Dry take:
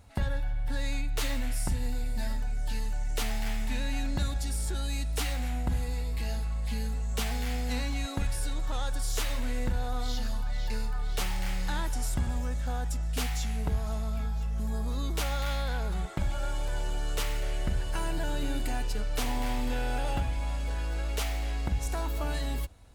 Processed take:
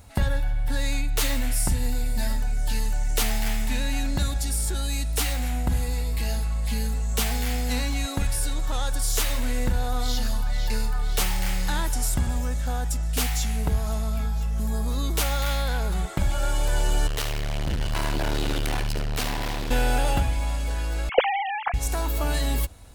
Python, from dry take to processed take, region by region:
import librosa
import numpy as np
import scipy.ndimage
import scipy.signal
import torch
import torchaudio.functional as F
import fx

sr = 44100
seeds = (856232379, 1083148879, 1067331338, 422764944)

y = fx.chain(x, sr, fx.high_shelf_res(hz=5700.0, db=-7.0, q=1.5),
    fx.clip_hard(threshold_db=-34.5),
    fx.echo_single(ms=71, db=-9.5), at=(17.07, 19.71))
y = fx.chain(y, sr, fx.sine_speech(),
    fx.tilt_eq(slope=-4.0), at=(21.09, 21.74))
y = fx.high_shelf(y, sr, hz=7400.0, db=8.5)
y = fx.rider(y, sr, range_db=10, speed_s=2.0)
y = y * librosa.db_to_amplitude(5.5)